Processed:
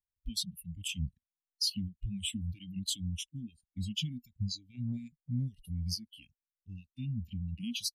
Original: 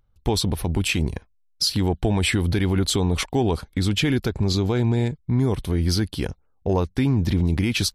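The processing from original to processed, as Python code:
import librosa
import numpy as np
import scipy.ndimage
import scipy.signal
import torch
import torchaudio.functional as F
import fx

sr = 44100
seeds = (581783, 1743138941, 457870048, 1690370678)

y = fx.dereverb_blind(x, sr, rt60_s=0.7)
y = scipy.signal.sosfilt(scipy.signal.cheby1(5, 1.0, [240.0, 2800.0], 'bandstop', fs=sr, output='sos'), y)
y = fx.noise_reduce_blind(y, sr, reduce_db=27)
y = fx.transient(y, sr, attack_db=-1, sustain_db=6, at=(4.68, 5.82), fade=0.02)
y = fx.comb_fb(y, sr, f0_hz=75.0, decay_s=0.17, harmonics='odd', damping=0.0, mix_pct=40, at=(6.95, 7.52), fade=0.02)
y = F.gain(torch.from_numpy(y), -8.5).numpy()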